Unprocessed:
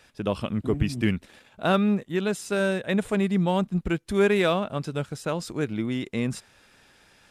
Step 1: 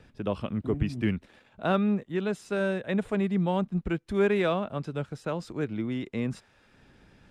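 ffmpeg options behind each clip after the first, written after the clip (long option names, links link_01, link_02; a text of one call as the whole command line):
ffmpeg -i in.wav -filter_complex "[0:a]lowpass=frequency=2500:poles=1,acrossover=split=340|940|1800[link_01][link_02][link_03][link_04];[link_01]acompressor=mode=upward:threshold=-43dB:ratio=2.5[link_05];[link_05][link_02][link_03][link_04]amix=inputs=4:normalize=0,volume=-3dB" out.wav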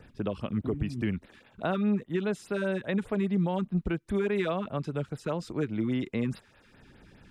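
ffmpeg -i in.wav -af "alimiter=limit=-22dB:level=0:latency=1:release=244,afftfilt=real='re*(1-between(b*sr/1024,550*pow(7700/550,0.5+0.5*sin(2*PI*4.9*pts/sr))/1.41,550*pow(7700/550,0.5+0.5*sin(2*PI*4.9*pts/sr))*1.41))':imag='im*(1-between(b*sr/1024,550*pow(7700/550,0.5+0.5*sin(2*PI*4.9*pts/sr))/1.41,550*pow(7700/550,0.5+0.5*sin(2*PI*4.9*pts/sr))*1.41))':win_size=1024:overlap=0.75,volume=2.5dB" out.wav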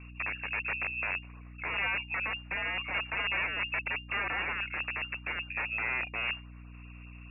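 ffmpeg -i in.wav -af "aeval=exprs='(mod(17.8*val(0)+1,2)-1)/17.8':channel_layout=same,lowpass=frequency=2400:width_type=q:width=0.5098,lowpass=frequency=2400:width_type=q:width=0.6013,lowpass=frequency=2400:width_type=q:width=0.9,lowpass=frequency=2400:width_type=q:width=2.563,afreqshift=-2800,aeval=exprs='val(0)+0.00562*(sin(2*PI*60*n/s)+sin(2*PI*2*60*n/s)/2+sin(2*PI*3*60*n/s)/3+sin(2*PI*4*60*n/s)/4+sin(2*PI*5*60*n/s)/5)':channel_layout=same,volume=-1.5dB" out.wav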